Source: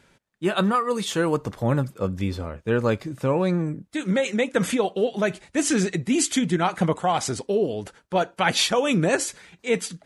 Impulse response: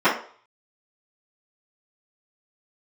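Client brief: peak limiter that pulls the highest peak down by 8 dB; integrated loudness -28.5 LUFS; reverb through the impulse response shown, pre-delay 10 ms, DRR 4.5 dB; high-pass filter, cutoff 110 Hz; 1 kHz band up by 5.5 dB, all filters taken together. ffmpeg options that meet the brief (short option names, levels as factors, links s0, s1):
-filter_complex "[0:a]highpass=110,equalizer=f=1000:t=o:g=7.5,alimiter=limit=0.282:level=0:latency=1,asplit=2[s0][s1];[1:a]atrim=start_sample=2205,adelay=10[s2];[s1][s2]afir=irnorm=-1:irlink=0,volume=0.0501[s3];[s0][s3]amix=inputs=2:normalize=0,volume=0.501"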